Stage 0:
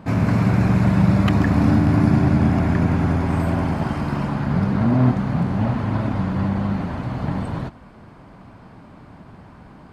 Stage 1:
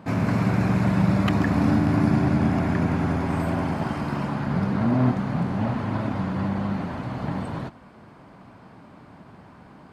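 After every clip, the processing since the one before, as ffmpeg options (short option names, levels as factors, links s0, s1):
-af "highpass=f=140:p=1,volume=0.794"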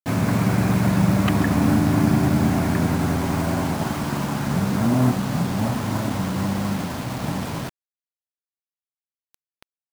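-af "acrusher=bits=5:mix=0:aa=0.000001,volume=1.26"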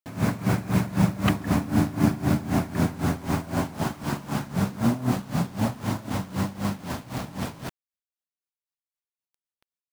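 -af "aeval=exprs='val(0)*pow(10,-18*(0.5-0.5*cos(2*PI*3.9*n/s))/20)':c=same"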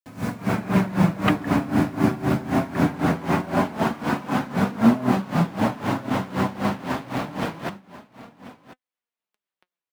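-filter_complex "[0:a]aecho=1:1:1039:0.15,acrossover=split=190|3400[s0][s1][s2];[s1]dynaudnorm=f=330:g=3:m=3.98[s3];[s0][s3][s2]amix=inputs=3:normalize=0,flanger=delay=3.9:depth=4:regen=65:speed=0.23:shape=sinusoidal"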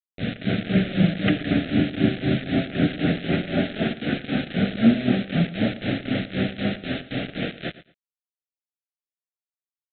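-af "aresample=8000,acrusher=bits=4:mix=0:aa=0.000001,aresample=44100,asuperstop=centerf=1000:order=4:qfactor=1.1,aecho=1:1:113|226:0.15|0.0314"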